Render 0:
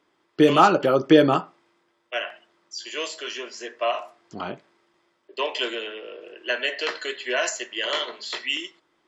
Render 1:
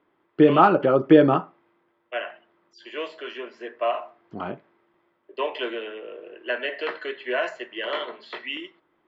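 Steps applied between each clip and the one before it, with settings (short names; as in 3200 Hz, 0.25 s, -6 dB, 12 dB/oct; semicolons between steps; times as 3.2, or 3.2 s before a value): air absorption 490 m; gain +2 dB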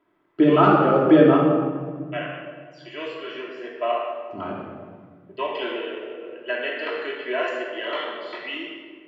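shoebox room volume 2100 m³, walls mixed, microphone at 2.9 m; gain -3.5 dB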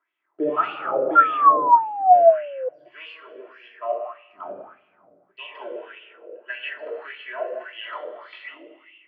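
painted sound fall, 1.15–2.69, 500–1400 Hz -10 dBFS; wah 1.7 Hz 510–2900 Hz, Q 4.2; gain +2.5 dB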